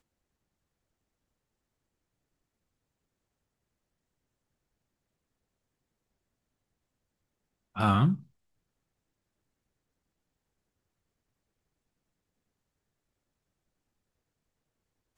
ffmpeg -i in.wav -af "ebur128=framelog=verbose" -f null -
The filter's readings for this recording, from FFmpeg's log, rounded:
Integrated loudness:
  I:         -27.2 LUFS
  Threshold: -38.3 LUFS
Loudness range:
  LRA:         5.5 LU
  Threshold: -54.2 LUFS
  LRA low:   -39.0 LUFS
  LRA high:  -33.5 LUFS